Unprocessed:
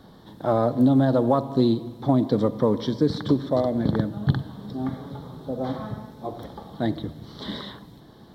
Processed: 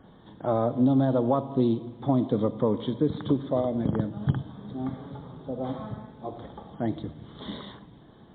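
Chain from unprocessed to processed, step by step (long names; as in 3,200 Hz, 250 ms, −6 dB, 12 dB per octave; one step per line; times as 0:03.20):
dynamic equaliser 1,700 Hz, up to −6 dB, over −50 dBFS, Q 3.1
level −3 dB
MP3 24 kbit/s 8,000 Hz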